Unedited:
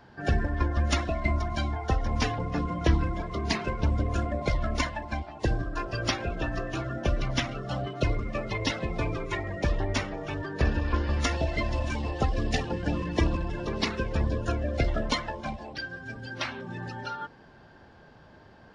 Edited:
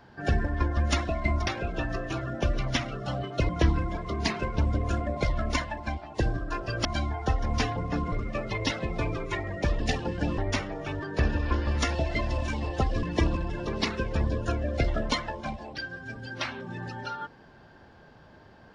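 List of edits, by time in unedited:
1.47–2.74 s: swap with 6.10–8.12 s
12.45–13.03 s: move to 9.80 s

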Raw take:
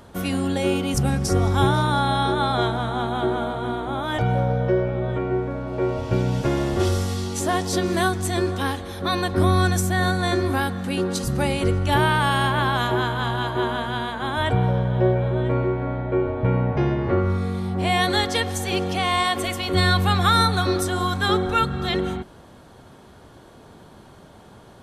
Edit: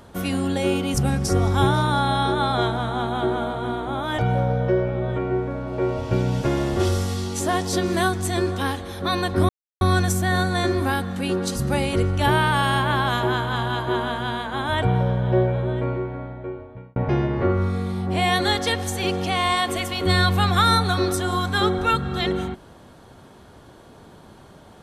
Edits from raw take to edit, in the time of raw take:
9.49 s: insert silence 0.32 s
15.10–16.64 s: fade out

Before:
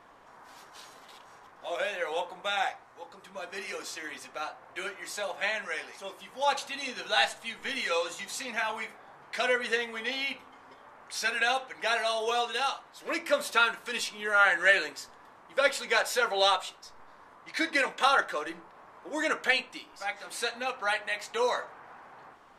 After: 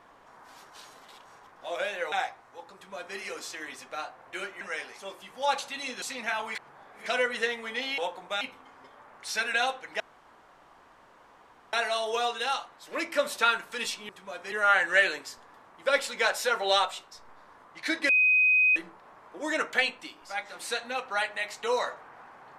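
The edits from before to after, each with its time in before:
2.12–2.55 s: move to 10.28 s
3.17–3.60 s: copy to 14.23 s
5.04–5.60 s: delete
7.01–8.32 s: delete
8.85–9.36 s: reverse
11.87 s: insert room tone 1.73 s
17.80–18.47 s: bleep 2.51 kHz -18.5 dBFS

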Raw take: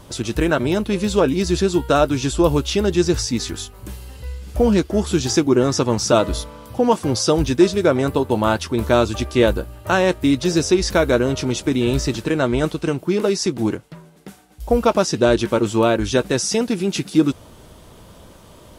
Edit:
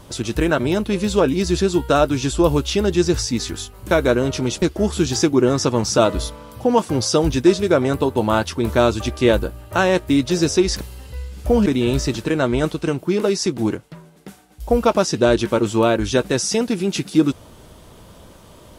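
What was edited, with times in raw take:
3.91–4.76 s: swap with 10.95–11.66 s

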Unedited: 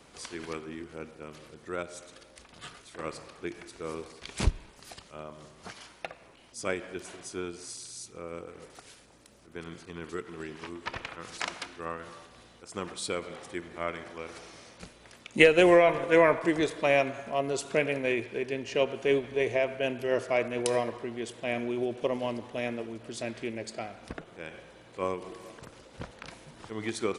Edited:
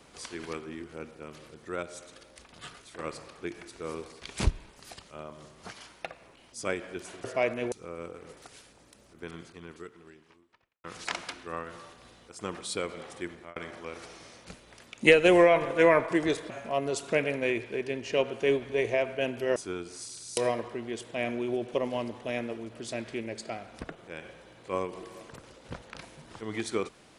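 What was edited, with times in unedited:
7.24–8.05 s: swap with 20.18–20.66 s
9.60–11.17 s: fade out quadratic
13.64–13.89 s: fade out
16.83–17.12 s: delete

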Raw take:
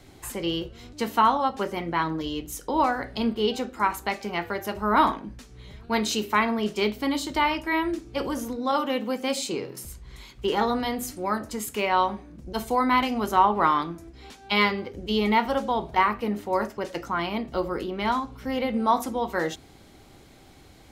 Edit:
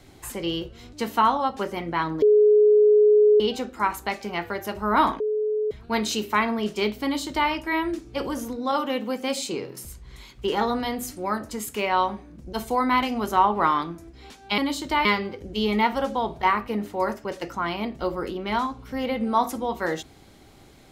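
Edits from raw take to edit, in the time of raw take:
2.22–3.40 s: bleep 421 Hz -12.5 dBFS
5.20–5.71 s: bleep 427 Hz -21.5 dBFS
7.03–7.50 s: copy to 14.58 s

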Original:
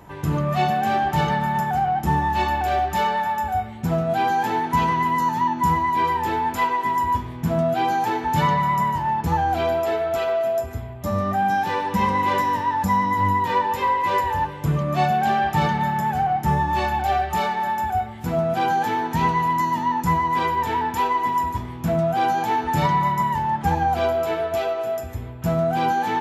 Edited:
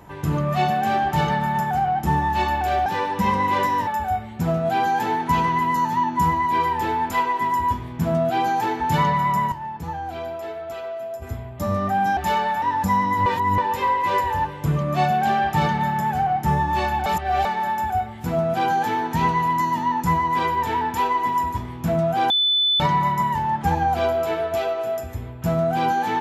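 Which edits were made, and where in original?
2.86–3.31 s: swap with 11.61–12.62 s
8.96–10.66 s: gain -9 dB
13.26–13.58 s: reverse
17.06–17.45 s: reverse
22.30–22.80 s: bleep 3.5 kHz -16 dBFS

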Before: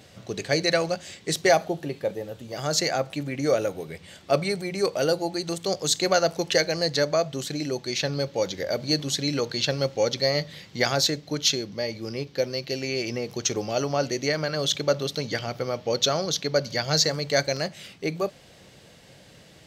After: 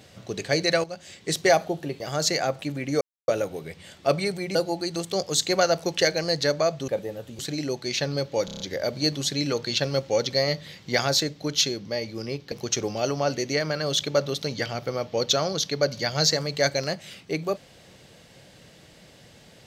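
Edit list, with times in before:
0.84–1.29 s: fade in, from -13.5 dB
2.00–2.51 s: move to 7.41 s
3.52 s: insert silence 0.27 s
4.79–5.08 s: delete
8.47 s: stutter 0.03 s, 6 plays
12.39–13.25 s: delete

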